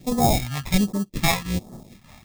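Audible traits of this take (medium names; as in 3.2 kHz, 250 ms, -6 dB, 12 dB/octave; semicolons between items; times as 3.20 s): aliases and images of a low sample rate 1.5 kHz, jitter 0%; phasing stages 2, 1.3 Hz, lowest notch 350–2400 Hz; random flutter of the level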